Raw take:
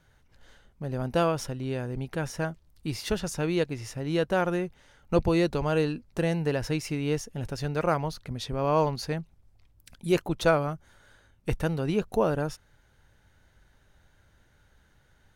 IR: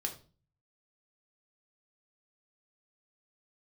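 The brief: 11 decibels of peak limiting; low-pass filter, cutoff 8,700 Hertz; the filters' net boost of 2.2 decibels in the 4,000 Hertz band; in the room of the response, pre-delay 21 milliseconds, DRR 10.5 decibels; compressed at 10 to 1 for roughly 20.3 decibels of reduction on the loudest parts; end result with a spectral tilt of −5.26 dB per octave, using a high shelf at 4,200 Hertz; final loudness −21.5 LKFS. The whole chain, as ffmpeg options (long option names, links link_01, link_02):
-filter_complex "[0:a]lowpass=8700,equalizer=frequency=4000:width_type=o:gain=5,highshelf=frequency=4200:gain=-3.5,acompressor=threshold=-39dB:ratio=10,alimiter=level_in=14dB:limit=-24dB:level=0:latency=1,volume=-14dB,asplit=2[link_01][link_02];[1:a]atrim=start_sample=2205,adelay=21[link_03];[link_02][link_03]afir=irnorm=-1:irlink=0,volume=-11.5dB[link_04];[link_01][link_04]amix=inputs=2:normalize=0,volume=26.5dB"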